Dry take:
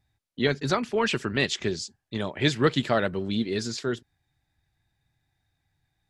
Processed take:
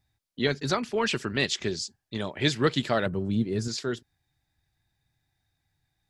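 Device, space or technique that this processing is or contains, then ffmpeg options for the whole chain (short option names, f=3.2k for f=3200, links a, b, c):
presence and air boost: -filter_complex "[0:a]equalizer=f=4.9k:t=o:w=0.77:g=3,highshelf=f=9.1k:g=5.5,asettb=1/sr,asplit=3[a][b][c];[a]atrim=end=3.064[d];[b]atrim=start=3.06:end=3.68,asetpts=PTS-STARTPTS,afade=t=in:d=0.004:c=qsin,afade=t=out:st=0.616:d=0.004:c=qsin,equalizer=f=125:t=o:w=1:g=10,equalizer=f=2k:t=o:w=1:g=-5,equalizer=f=4k:t=o:w=1:g=-12[e];[c]atrim=start=3.676[f];[d][e]acrossfade=d=0.004:c1=hsin:c2=qsin[g];[g][f]acrossfade=d=0.004:c1=qsin:c2=hsin,volume=-2dB"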